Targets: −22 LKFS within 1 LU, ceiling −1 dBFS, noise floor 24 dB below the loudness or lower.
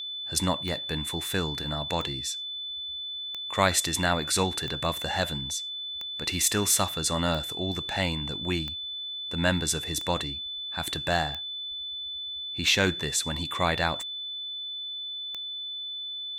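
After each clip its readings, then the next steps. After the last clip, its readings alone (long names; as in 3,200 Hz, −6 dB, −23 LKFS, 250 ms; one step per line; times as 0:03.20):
number of clicks 12; interfering tone 3,500 Hz; level of the tone −33 dBFS; integrated loudness −28.0 LKFS; sample peak −7.5 dBFS; target loudness −22.0 LKFS
→ click removal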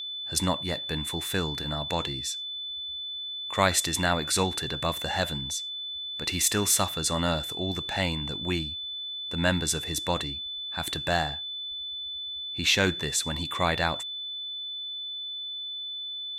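number of clicks 0; interfering tone 3,500 Hz; level of the tone −33 dBFS
→ notch filter 3,500 Hz, Q 30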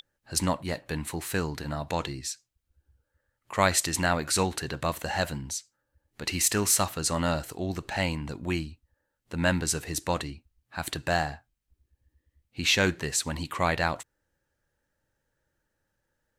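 interfering tone none found; integrated loudness −28.5 LKFS; sample peak −8.0 dBFS; target loudness −22.0 LKFS
→ level +6.5 dB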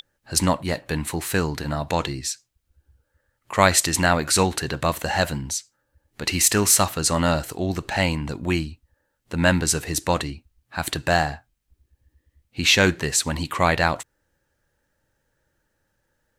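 integrated loudness −22.0 LKFS; sample peak −1.5 dBFS; background noise floor −74 dBFS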